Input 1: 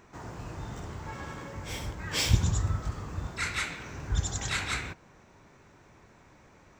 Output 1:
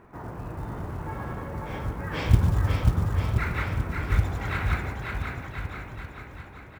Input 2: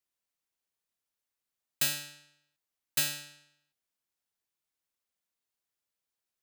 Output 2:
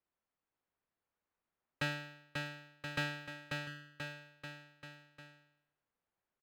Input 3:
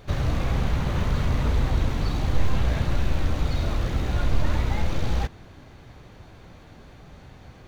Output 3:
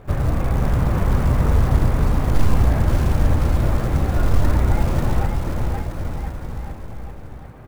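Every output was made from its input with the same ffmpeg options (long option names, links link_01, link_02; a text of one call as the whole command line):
ffmpeg -i in.wav -af "lowpass=1600,acrusher=bits=7:mode=log:mix=0:aa=0.000001,aecho=1:1:540|1026|1463|1857|2211:0.631|0.398|0.251|0.158|0.1,volume=4.5dB" out.wav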